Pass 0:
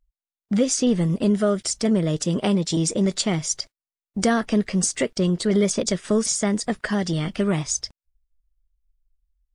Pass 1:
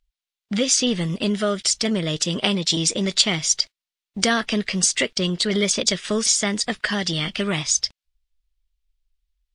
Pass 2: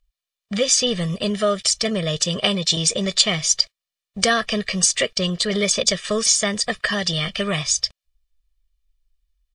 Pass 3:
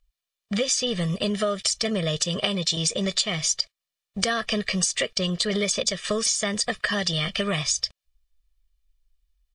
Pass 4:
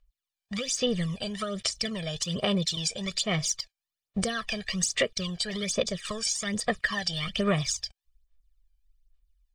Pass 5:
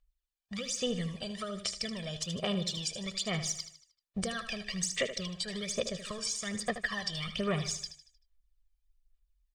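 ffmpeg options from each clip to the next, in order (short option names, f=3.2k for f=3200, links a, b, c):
-af "equalizer=f=3.4k:w=0.54:g=15,volume=-3.5dB"
-af "aecho=1:1:1.7:0.7"
-af "acompressor=threshold=-21dB:ratio=6"
-af "aphaser=in_gain=1:out_gain=1:delay=1.3:decay=0.67:speed=1.2:type=sinusoidal,volume=-7.5dB"
-af "aecho=1:1:77|154|231|308|385:0.282|0.124|0.0546|0.024|0.0106,volume=-6dB"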